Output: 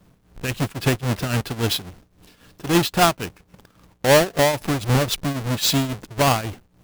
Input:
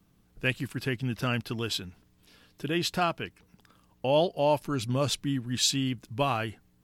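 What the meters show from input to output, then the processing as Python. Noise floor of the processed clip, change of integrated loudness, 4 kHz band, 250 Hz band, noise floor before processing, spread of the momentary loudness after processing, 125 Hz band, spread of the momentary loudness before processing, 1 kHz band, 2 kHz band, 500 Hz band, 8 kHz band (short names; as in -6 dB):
-60 dBFS, +8.0 dB, +7.0 dB, +7.5 dB, -66 dBFS, 12 LU, +9.0 dB, 9 LU, +8.5 dB, +8.5 dB, +7.5 dB, +8.0 dB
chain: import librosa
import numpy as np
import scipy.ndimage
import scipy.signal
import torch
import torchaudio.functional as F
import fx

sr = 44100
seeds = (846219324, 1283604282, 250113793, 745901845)

y = fx.halfwave_hold(x, sr)
y = fx.tremolo_shape(y, sr, shape='triangle', hz=3.7, depth_pct=80)
y = y * 10.0 ** (8.0 / 20.0)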